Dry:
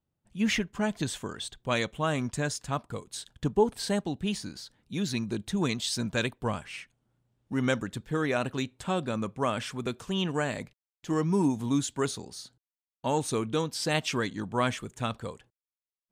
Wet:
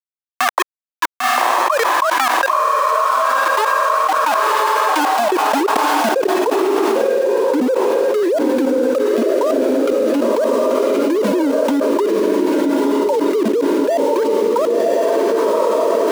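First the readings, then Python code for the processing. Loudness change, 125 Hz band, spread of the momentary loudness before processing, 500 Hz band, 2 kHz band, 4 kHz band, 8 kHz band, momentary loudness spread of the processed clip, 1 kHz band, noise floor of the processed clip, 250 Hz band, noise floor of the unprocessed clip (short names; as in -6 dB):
+14.5 dB, n/a, 12 LU, +18.5 dB, +14.0 dB, +8.0 dB, +8.0 dB, 1 LU, +20.0 dB, under -85 dBFS, +11.5 dB, under -85 dBFS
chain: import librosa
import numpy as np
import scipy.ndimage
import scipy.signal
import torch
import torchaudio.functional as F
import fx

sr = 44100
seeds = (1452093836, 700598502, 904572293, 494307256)

p1 = fx.sine_speech(x, sr)
p2 = fx.dereverb_blind(p1, sr, rt60_s=0.94)
p3 = fx.high_shelf(p2, sr, hz=2600.0, db=-8.5)
p4 = fx.leveller(p3, sr, passes=3)
p5 = fx.transient(p4, sr, attack_db=-4, sustain_db=-8)
p6 = fx.level_steps(p5, sr, step_db=23)
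p7 = fx.auto_wah(p6, sr, base_hz=540.0, top_hz=1900.0, q=2.6, full_db=-23.5, direction='down')
p8 = np.where(np.abs(p7) >= 10.0 ** (-36.0 / 20.0), p7, 0.0)
p9 = fx.filter_sweep_highpass(p8, sr, from_hz=1100.0, to_hz=250.0, start_s=3.83, end_s=6.88, q=2.9)
p10 = p9 + fx.echo_diffused(p9, sr, ms=1081, feedback_pct=47, wet_db=-5.0, dry=0)
p11 = fx.env_flatten(p10, sr, amount_pct=100)
y = p11 * 10.0 ** (5.5 / 20.0)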